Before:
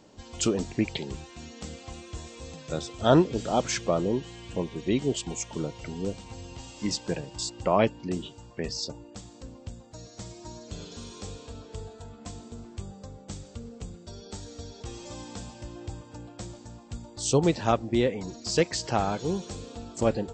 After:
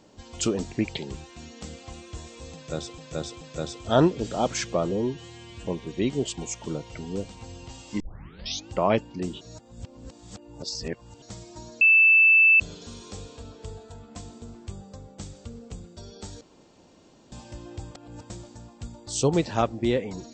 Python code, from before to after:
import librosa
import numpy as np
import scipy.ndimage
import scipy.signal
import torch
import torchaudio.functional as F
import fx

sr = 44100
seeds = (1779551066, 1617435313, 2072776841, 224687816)

y = fx.edit(x, sr, fx.repeat(start_s=2.55, length_s=0.43, count=3),
    fx.stretch_span(start_s=4.05, length_s=0.5, factor=1.5),
    fx.tape_start(start_s=6.89, length_s=0.69),
    fx.reverse_span(start_s=8.3, length_s=1.81),
    fx.insert_tone(at_s=10.7, length_s=0.79, hz=2640.0, db=-13.0),
    fx.room_tone_fill(start_s=14.51, length_s=0.91),
    fx.reverse_span(start_s=16.05, length_s=0.35), tone=tone)